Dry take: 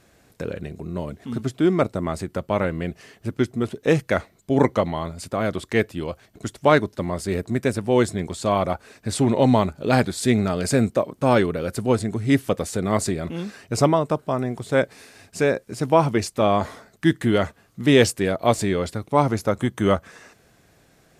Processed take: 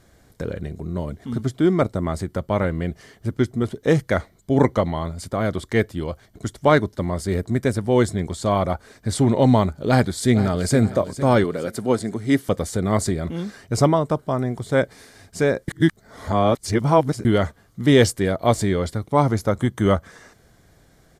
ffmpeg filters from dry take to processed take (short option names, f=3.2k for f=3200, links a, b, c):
-filter_complex "[0:a]asplit=2[a][b];[b]afade=t=in:st=9.88:d=0.01,afade=t=out:st=10.76:d=0.01,aecho=0:1:460|920|1380|1840:0.223872|0.0895488|0.0358195|0.0143278[c];[a][c]amix=inputs=2:normalize=0,asettb=1/sr,asplit=3[d][e][f];[d]atrim=end=11.444[g];[e]atrim=start=11.44:end=12.49,asetpts=PTS-STARTPTS,afade=t=in:d=0.004:c=qsin,afade=t=out:st=1.046:d=0.004:c=qsin,highpass=190[h];[f]atrim=start=12.486[i];[g][h]acrossfade=d=0.004:c1=hsin:c2=qsin[j];[j][i]acrossfade=d=0.004:c1=qsin:c2=hsin,asplit=3[k][l][m];[k]atrim=end=15.682[n];[l]atrim=start=15.678:end=17.252,asetpts=PTS-STARTPTS,areverse[o];[m]atrim=start=17.248[p];[n][o]acrossfade=d=0.004:c1=hsin:c2=hsin[q];[q][p]acrossfade=d=0.004:c1=hsin:c2=hsin,lowshelf=f=85:g=11.5,bandreject=f=2.6k:w=5.6"